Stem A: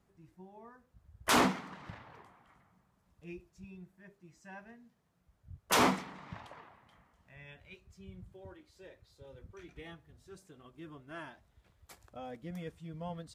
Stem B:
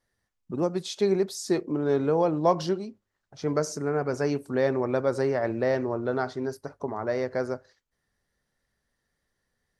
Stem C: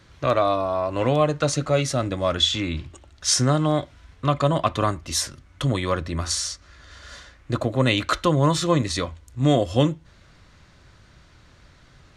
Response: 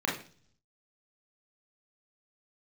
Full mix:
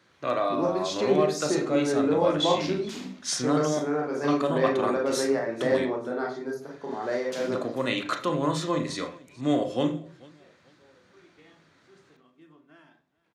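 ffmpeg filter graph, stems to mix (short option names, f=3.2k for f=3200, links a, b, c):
-filter_complex "[0:a]acrossover=split=300|3000[a][b][c];[b]acompressor=threshold=-52dB:ratio=4[d];[a][d][c]amix=inputs=3:normalize=0,adelay=1600,volume=-8.5dB,asplit=3[e][f][g];[f]volume=-10dB[h];[g]volume=-17.5dB[i];[1:a]aemphasis=mode=production:type=cd,volume=-1dB,asplit=2[j][k];[k]volume=-10.5dB[l];[2:a]volume=-11dB,asplit=3[m][n][o];[m]atrim=end=5.86,asetpts=PTS-STARTPTS,afade=t=out:st=5.856:d=0.004:c=hsin[p];[n]atrim=start=5.86:end=6.61,asetpts=PTS-STARTPTS,volume=0[q];[o]atrim=start=6.61,asetpts=PTS-STARTPTS,afade=t=in:d=0.004:c=hsin[r];[p][q][r]concat=n=3:v=0:a=1,asplit=4[s][t][u][v];[t]volume=-8.5dB[w];[u]volume=-19.5dB[x];[v]apad=whole_len=431741[y];[j][y]sidechaingate=range=-33dB:threshold=-52dB:ratio=16:detection=peak[z];[e][z]amix=inputs=2:normalize=0,lowpass=7.2k,acompressor=threshold=-34dB:ratio=6,volume=0dB[aa];[3:a]atrim=start_sample=2205[ab];[h][l][w]amix=inputs=3:normalize=0[ac];[ac][ab]afir=irnorm=-1:irlink=0[ad];[i][x]amix=inputs=2:normalize=0,aecho=0:1:441|882|1323|1764|2205:1|0.32|0.102|0.0328|0.0105[ae];[s][aa][ad][ae]amix=inputs=4:normalize=0,highpass=190"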